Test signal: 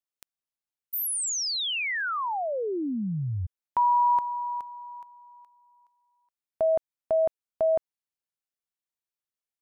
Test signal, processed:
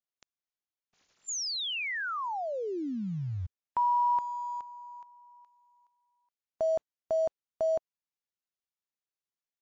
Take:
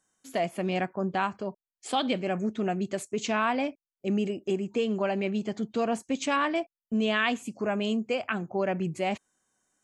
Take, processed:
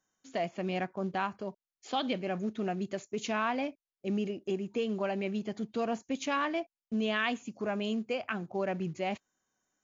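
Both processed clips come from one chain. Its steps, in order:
in parallel at −10 dB: floating-point word with a short mantissa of 2 bits
on the sum: level −6.5 dB
MP3 80 kbit/s 16,000 Hz

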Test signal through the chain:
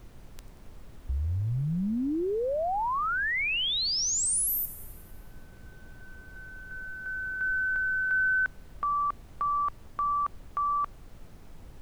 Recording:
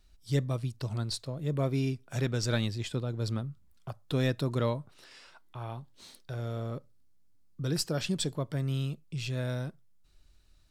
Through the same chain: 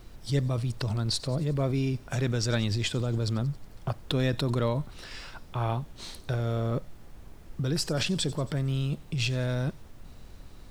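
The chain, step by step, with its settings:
high-shelf EQ 12,000 Hz −11.5 dB
in parallel at 0 dB: compressor whose output falls as the input rises −37 dBFS, ratio −0.5
on the sum: background noise brown −46 dBFS
bit reduction 11 bits
on a send: delay with a high-pass on its return 91 ms, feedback 63%, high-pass 5,000 Hz, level −15.5 dB
on the sum: level +1 dB

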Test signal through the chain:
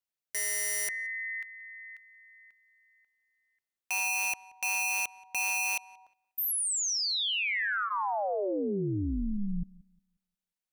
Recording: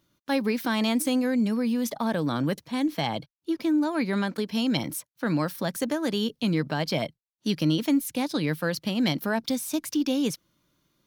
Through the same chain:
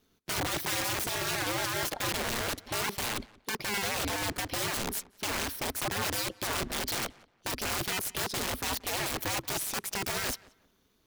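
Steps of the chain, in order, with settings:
wrap-around overflow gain 27.5 dB
notch filter 1,200 Hz, Q 22
ring modulation 100 Hz
feedback echo with a low-pass in the loop 179 ms, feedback 25%, low-pass 3,100 Hz, level −22 dB
level +3.5 dB

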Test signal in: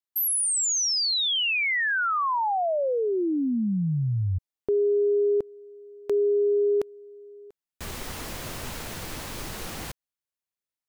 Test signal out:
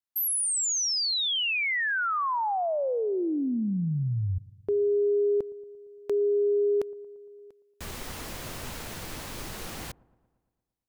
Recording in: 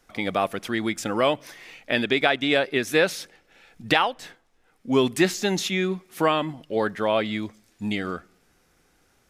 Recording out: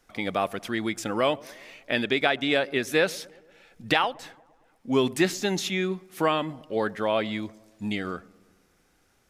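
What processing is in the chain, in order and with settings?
delay with a low-pass on its return 115 ms, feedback 60%, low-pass 930 Hz, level −22 dB
level −2.5 dB

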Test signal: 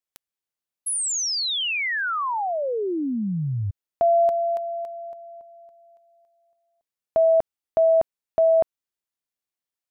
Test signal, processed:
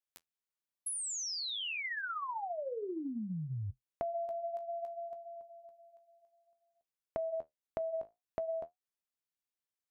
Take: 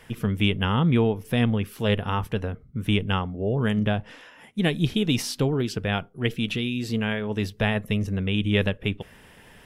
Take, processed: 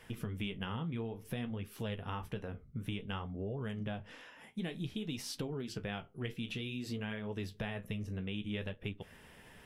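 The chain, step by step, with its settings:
flanger 0.56 Hz, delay 9.8 ms, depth 9.1 ms, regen −47%
downward compressor, threshold −34 dBFS
level −2.5 dB

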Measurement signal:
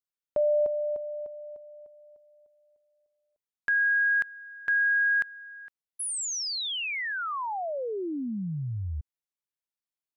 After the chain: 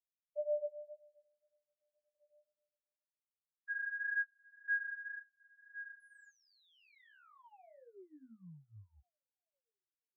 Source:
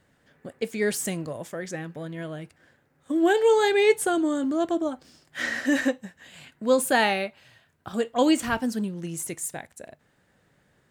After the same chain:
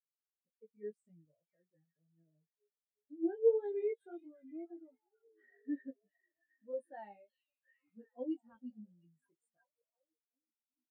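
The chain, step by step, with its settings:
echo through a band-pass that steps 357 ms, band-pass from 3,700 Hz, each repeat −0.7 octaves, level −3 dB
chorus effect 1.9 Hz, delay 17 ms, depth 3 ms
every bin expanded away from the loudest bin 2.5 to 1
level −8 dB

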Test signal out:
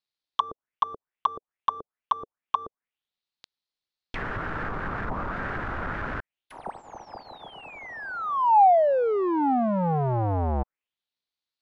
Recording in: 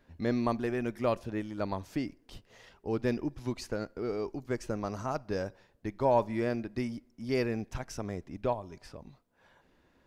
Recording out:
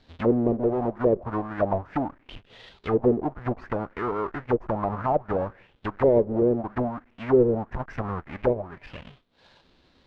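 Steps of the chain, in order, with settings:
each half-wave held at its own peak
envelope-controlled low-pass 440–4,200 Hz down, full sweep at −23 dBFS

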